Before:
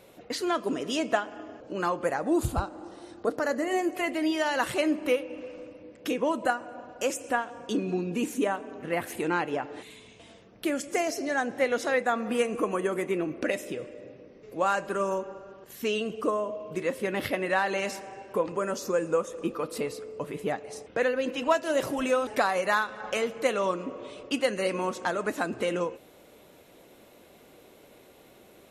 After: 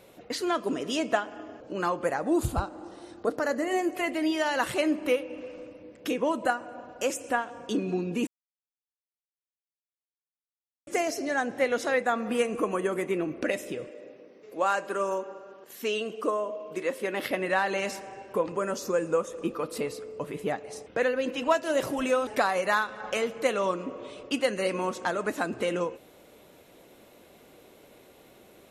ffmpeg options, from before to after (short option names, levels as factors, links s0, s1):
-filter_complex "[0:a]asettb=1/sr,asplit=3[s0][s1][s2];[s0]atrim=end=13.894[s3];[s1]atrim=start=13.89:end=17.31,asetpts=PTS-STARTPTS,afade=t=in:d=0.004:c=qsin,afade=t=out:st=3.416:d=0.004:c=qsin,highpass=270[s4];[s2]atrim=start=17.306[s5];[s3][s4]acrossfade=d=0.004:c1=hsin:c2=qsin[s6];[s6][s5]acrossfade=d=0.004:c1=qsin:c2=hsin,asplit=3[s7][s8][s9];[s7]atrim=end=8.27,asetpts=PTS-STARTPTS,afade=t=out:st=8.266:d=0.004:c=hsin[s10];[s8]atrim=start=8.27:end=10.87,asetpts=PTS-STARTPTS,volume=0[s11];[s9]atrim=start=10.87,asetpts=PTS-STARTPTS,afade=t=in:d=0.004:c=hsin[s12];[s10][s11][s12]concat=n=3:v=0:a=1"